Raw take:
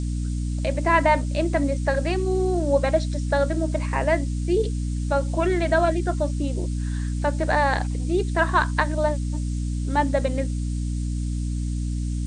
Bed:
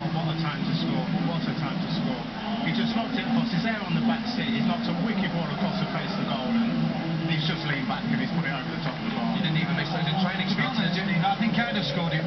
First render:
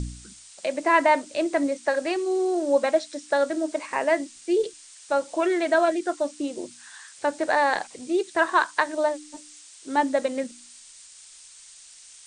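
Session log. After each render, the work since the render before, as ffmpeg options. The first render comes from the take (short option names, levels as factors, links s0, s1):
-af "bandreject=f=60:t=h:w=4,bandreject=f=120:t=h:w=4,bandreject=f=180:t=h:w=4,bandreject=f=240:t=h:w=4,bandreject=f=300:t=h:w=4"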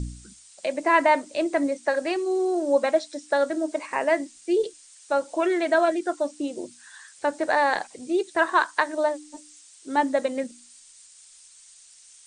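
-af "afftdn=nr=6:nf=-48"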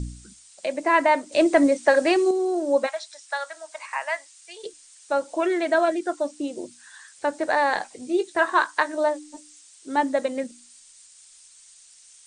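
-filter_complex "[0:a]asettb=1/sr,asplit=3[s0][s1][s2];[s0]atrim=end=1.324[s3];[s1]atrim=start=1.32:end=2.31,asetpts=PTS-STARTPTS,afade=t=in:d=0.004:c=qsin,afade=t=out:st=0.986:d=0.004:c=qsin,acontrast=74[s4];[s2]atrim=start=2.306[s5];[s3][s4]acrossfade=d=0.004:c1=hsin:c2=qsin[s6];[s6][s5]acrossfade=d=0.004:c1=qsin:c2=hsin,asplit=3[s7][s8][s9];[s7]afade=t=out:st=2.86:d=0.02[s10];[s8]highpass=f=840:w=0.5412,highpass=f=840:w=1.3066,afade=t=in:st=2.86:d=0.02,afade=t=out:st=4.63:d=0.02[s11];[s9]afade=t=in:st=4.63:d=0.02[s12];[s10][s11][s12]amix=inputs=3:normalize=0,asettb=1/sr,asplit=3[s13][s14][s15];[s13]atrim=end=7.704[s16];[s14]atrim=start=7.7:end=9.32,asetpts=PTS-STARTPTS,afade=t=in:d=0.004:c=qsin,afade=t=out:st=1.616:d=0.004:c=qsin,asplit=2[s17][s18];[s18]adelay=20,volume=0.282[s19];[s17][s19]amix=inputs=2:normalize=0,atrim=end_sample=71442[s20];[s15]atrim=start=9.316[s21];[s16][s20]acrossfade=d=0.004:c1=hsin:c2=qsin[s22];[s22][s21]acrossfade=d=0.004:c1=qsin:c2=hsin"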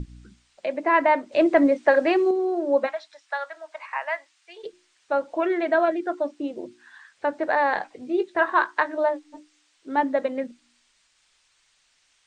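-af "lowpass=2700,bandreject=f=60:t=h:w=6,bandreject=f=120:t=h:w=6,bandreject=f=180:t=h:w=6,bandreject=f=240:t=h:w=6,bandreject=f=300:t=h:w=6,bandreject=f=360:t=h:w=6"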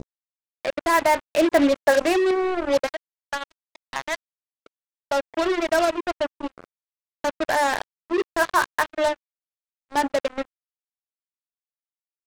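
-af "acrusher=bits=3:mix=0:aa=0.5"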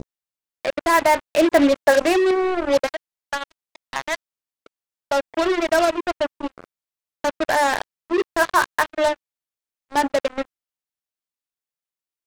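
-af "volume=1.33"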